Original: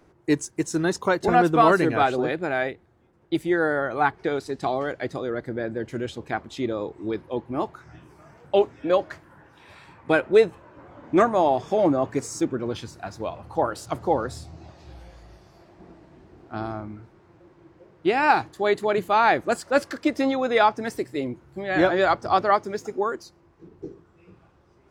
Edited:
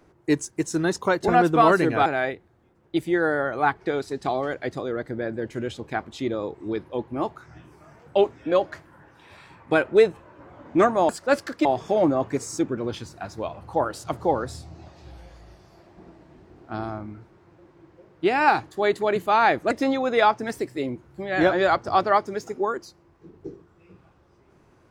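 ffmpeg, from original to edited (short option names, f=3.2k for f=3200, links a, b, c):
-filter_complex "[0:a]asplit=5[a][b][c][d][e];[a]atrim=end=2.062[f];[b]atrim=start=2.438:end=11.472[g];[c]atrim=start=19.528:end=20.092[h];[d]atrim=start=11.468:end=19.532[i];[e]atrim=start=20.088[j];[f][g]acrossfade=d=0.004:c1=hsin:c2=hsin[k];[k][h]acrossfade=d=0.004:c1=hsin:c2=hsin[l];[l][i]acrossfade=d=0.004:c1=hsin:c2=hsin[m];[m][j]acrossfade=d=0.004:c1=hsin:c2=hsin"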